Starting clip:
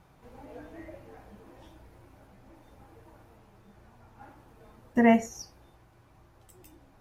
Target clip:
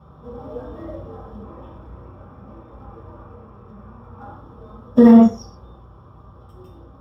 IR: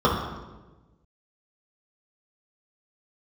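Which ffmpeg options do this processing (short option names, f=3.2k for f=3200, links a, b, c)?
-filter_complex "[0:a]asettb=1/sr,asplit=3[a][b][c];[a]atrim=end=1.424[d];[b]atrim=start=1.42:end=4.23,asetpts=PTS-STARTPTS,afade=t=in:d=0.004:c=qsin,afade=t=out:st=2.806:d=0.004:c=qsin,highshelf=f=3.2k:t=q:w=3:g=-9[e];[c]atrim=start=4.226[f];[d][e]acrossfade=d=0.004:c1=hsin:c2=qsin[g];[g][f]acrossfade=d=0.004:c1=qsin:c2=hsin,acrusher=bits=4:mode=log:mix=0:aa=0.000001[h];[1:a]atrim=start_sample=2205,afade=t=out:st=0.18:d=0.01,atrim=end_sample=8379[i];[h][i]afir=irnorm=-1:irlink=0,alimiter=level_in=-8.5dB:limit=-1dB:release=50:level=0:latency=1,volume=-1dB"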